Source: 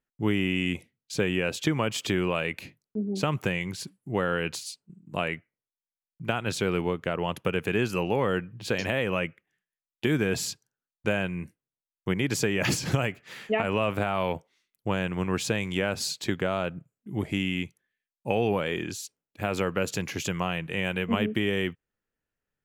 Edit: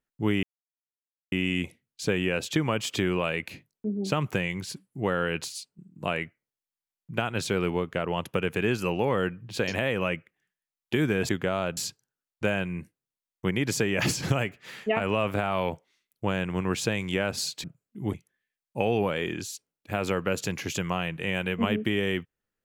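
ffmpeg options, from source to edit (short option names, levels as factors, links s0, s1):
-filter_complex "[0:a]asplit=6[s0][s1][s2][s3][s4][s5];[s0]atrim=end=0.43,asetpts=PTS-STARTPTS,afade=t=out:st=0.426:d=0.004:c=hsin,apad=pad_dur=0.89[s6];[s1]atrim=start=0.43:end=10.402,asetpts=PTS-STARTPTS,afade=t=in:d=0.004:c=hsin[s7];[s2]atrim=start=16.268:end=16.752[s8];[s3]atrim=start=10.398:end=16.272[s9];[s4]atrim=start=16.748:end=17.252[s10];[s5]atrim=start=17.638[s11];[s6][s7]concat=n=2:v=0:a=1[s12];[s12][s8]acrossfade=d=0.004:c1=hsin:c2=hsin[s13];[s13][s9]acrossfade=d=0.004:c1=hsin:c2=hsin[s14];[s14][s10]acrossfade=d=0.004:c1=hsin:c2=hsin[s15];[s15][s11]acrossfade=d=0.004:c1=hsin:c2=hsin"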